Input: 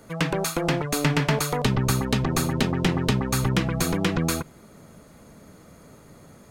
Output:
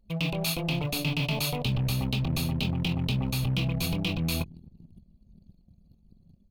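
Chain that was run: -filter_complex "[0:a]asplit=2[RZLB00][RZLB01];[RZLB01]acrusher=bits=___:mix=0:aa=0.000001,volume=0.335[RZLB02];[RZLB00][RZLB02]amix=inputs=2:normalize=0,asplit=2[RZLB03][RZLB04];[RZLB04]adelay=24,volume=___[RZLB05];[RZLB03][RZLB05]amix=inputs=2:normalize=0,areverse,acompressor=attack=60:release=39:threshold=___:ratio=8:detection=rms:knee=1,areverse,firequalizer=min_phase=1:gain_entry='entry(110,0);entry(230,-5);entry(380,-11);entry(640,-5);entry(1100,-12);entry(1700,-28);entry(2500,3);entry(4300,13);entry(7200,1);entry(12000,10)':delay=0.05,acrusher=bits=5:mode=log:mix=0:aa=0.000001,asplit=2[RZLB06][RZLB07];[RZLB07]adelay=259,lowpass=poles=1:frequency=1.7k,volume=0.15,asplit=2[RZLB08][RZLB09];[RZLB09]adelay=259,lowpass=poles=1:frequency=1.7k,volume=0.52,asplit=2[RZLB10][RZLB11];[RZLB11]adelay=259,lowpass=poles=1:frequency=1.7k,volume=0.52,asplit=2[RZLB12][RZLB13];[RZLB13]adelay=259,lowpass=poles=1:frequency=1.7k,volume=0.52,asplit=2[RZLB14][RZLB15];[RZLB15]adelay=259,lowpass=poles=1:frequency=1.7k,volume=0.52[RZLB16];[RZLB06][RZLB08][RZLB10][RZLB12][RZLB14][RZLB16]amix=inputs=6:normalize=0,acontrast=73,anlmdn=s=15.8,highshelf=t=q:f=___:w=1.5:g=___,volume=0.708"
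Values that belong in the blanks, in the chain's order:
6, 0.335, 0.0282, 3.4k, -10.5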